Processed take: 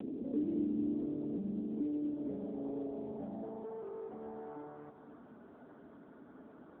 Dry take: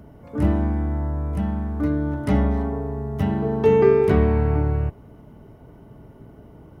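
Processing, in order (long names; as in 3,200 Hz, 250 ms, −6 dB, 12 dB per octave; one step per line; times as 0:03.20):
high-shelf EQ 2,400 Hz −11.5 dB
notch filter 2,500 Hz, Q 5
brickwall limiter −16 dBFS, peak gain reduction 10.5 dB
high-pass filter 150 Hz 24 dB per octave
on a send at −19.5 dB: convolution reverb RT60 2.5 s, pre-delay 45 ms
on the sum: downward compressor 4 to 1, threshold −40 dBFS, peak gain reduction 16.5 dB
soft clipping −39.5 dBFS, distortion −12 dB
graphic EQ with 15 bands 250 Hz +10 dB, 1,000 Hz −7 dB, 2,500 Hz −4 dB
feedback echo with a low-pass in the loop 216 ms, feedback 57%, low-pass 2,100 Hz, level −11 dB
band-pass filter sweep 360 Hz → 1,300 Hz, 0:01.53–0:05.30
level +9.5 dB
AMR narrowband 6.7 kbit/s 8,000 Hz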